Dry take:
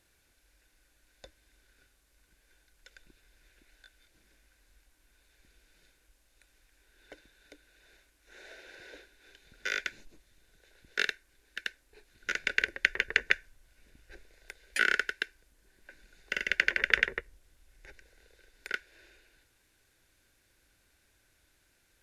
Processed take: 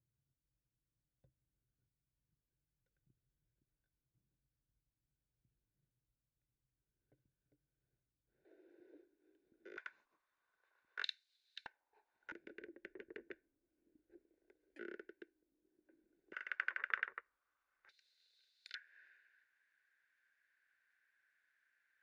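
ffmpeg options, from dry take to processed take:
-af "asetnsamples=n=441:p=0,asendcmd='8.45 bandpass f 330;9.77 bandpass f 1100;11.04 bandpass f 4000;11.66 bandpass f 880;12.32 bandpass f 320;16.33 bandpass f 1200;17.89 bandpass f 4100;18.75 bandpass f 1700',bandpass=f=130:t=q:w=6:csg=0"

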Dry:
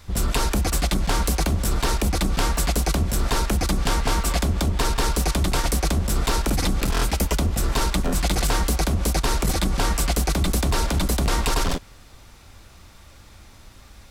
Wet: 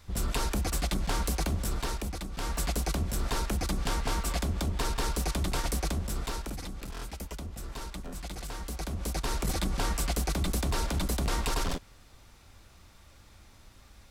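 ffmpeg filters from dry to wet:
-af "volume=3.16,afade=t=out:st=1.57:d=0.74:silence=0.354813,afade=t=in:st=2.31:d=0.28:silence=0.375837,afade=t=out:st=5.81:d=0.85:silence=0.354813,afade=t=in:st=8.57:d=0.95:silence=0.334965"

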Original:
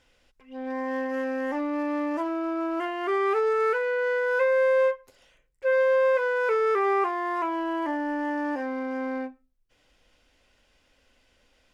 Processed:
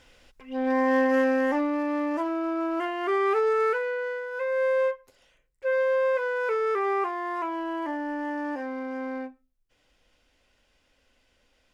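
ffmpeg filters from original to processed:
-af "volume=5.96,afade=t=out:st=1.14:d=0.66:silence=0.446684,afade=t=out:st=3.59:d=0.72:silence=0.281838,afade=t=in:st=4.31:d=0.34:silence=0.398107"

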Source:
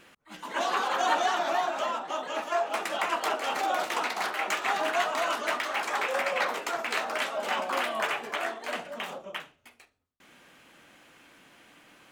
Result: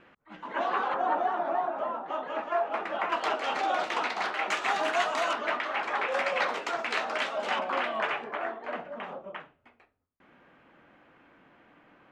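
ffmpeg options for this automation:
-af "asetnsamples=n=441:p=0,asendcmd='0.94 lowpass f 1100;2.06 lowpass f 1900;3.12 lowpass f 4500;4.51 lowpass f 7600;5.33 lowpass f 2900;6.12 lowpass f 5300;7.59 lowpass f 2900;8.24 lowpass f 1600',lowpass=2000"

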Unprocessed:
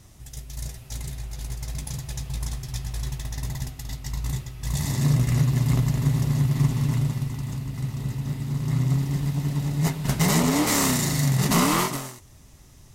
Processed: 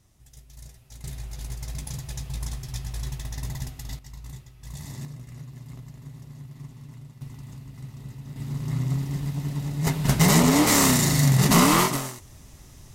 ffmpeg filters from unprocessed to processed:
-af "asetnsamples=n=441:p=0,asendcmd='1.04 volume volume -2dB;3.99 volume volume -12dB;5.05 volume volume -20dB;7.21 volume volume -10.5dB;8.36 volume volume -3.5dB;9.87 volume volume 3dB',volume=0.266"

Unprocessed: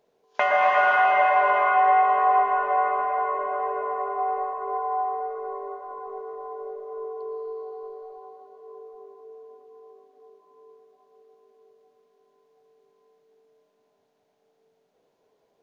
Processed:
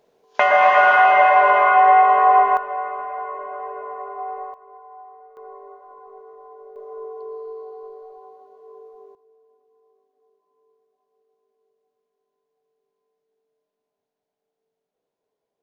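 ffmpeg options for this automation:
-af "asetnsamples=n=441:p=0,asendcmd='2.57 volume volume -4dB;4.54 volume volume -16dB;5.37 volume volume -7dB;6.76 volume volume 0dB;9.15 volume volume -13dB',volume=2"

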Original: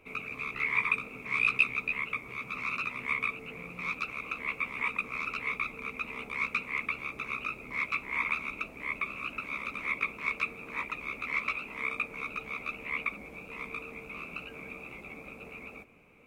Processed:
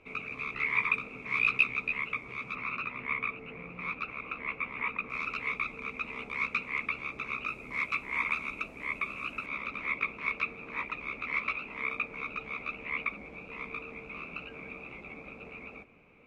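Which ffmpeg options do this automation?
-af "asetnsamples=n=441:p=0,asendcmd='2.55 lowpass f 2600;5.1 lowpass f 6000;7.48 lowpass f 10000;9.46 lowpass f 4200',lowpass=5600"

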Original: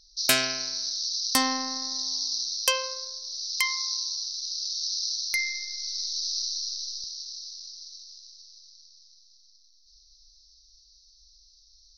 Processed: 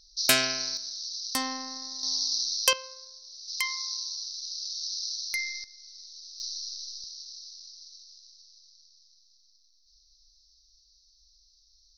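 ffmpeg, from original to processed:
-af "asetnsamples=n=441:p=0,asendcmd='0.77 volume volume -6.5dB;2.03 volume volume 1dB;2.73 volume volume -10.5dB;3.48 volume volume -4dB;5.64 volume volume -15.5dB;6.4 volume volume -5dB',volume=1"

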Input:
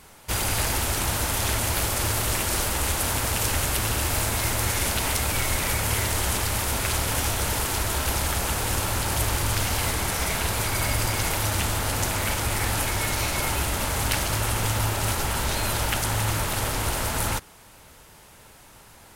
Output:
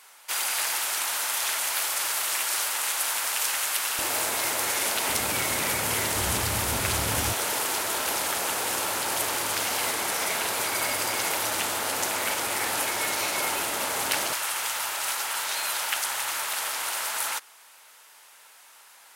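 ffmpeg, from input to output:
-af "asetnsamples=n=441:p=0,asendcmd='3.99 highpass f 390;5.08 highpass f 190;6.16 highpass f 86;7.33 highpass f 360;14.33 highpass f 970',highpass=970"

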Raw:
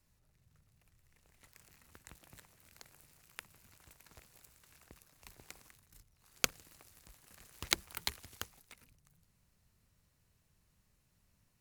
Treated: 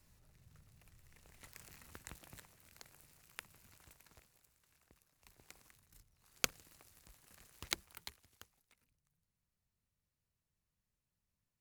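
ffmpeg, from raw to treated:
-af "volume=4.47,afade=t=out:st=1.8:d=0.81:silence=0.473151,afade=t=out:st=3.82:d=0.58:silence=0.334965,afade=t=in:st=5.17:d=0.67:silence=0.421697,afade=t=out:st=7.34:d=0.83:silence=0.251189"

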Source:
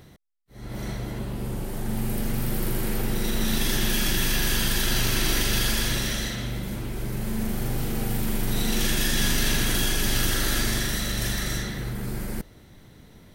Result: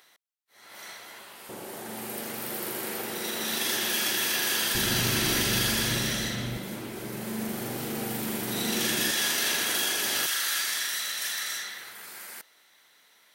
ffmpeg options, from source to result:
-af "asetnsamples=n=441:p=0,asendcmd='1.49 highpass f 420;4.75 highpass f 100;6.57 highpass f 230;9.11 highpass f 490;10.26 highpass f 1200',highpass=1100"

